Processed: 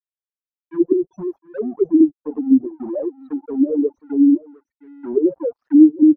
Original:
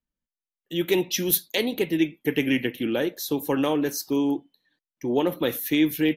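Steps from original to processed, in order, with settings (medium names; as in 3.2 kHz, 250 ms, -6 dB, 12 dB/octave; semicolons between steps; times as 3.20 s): loudest bins only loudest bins 2; crossover distortion -45 dBFS; on a send: delay 710 ms -19.5 dB; on the sum: touch-sensitive low-pass 290–2200 Hz down, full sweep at -22 dBFS; trim +3 dB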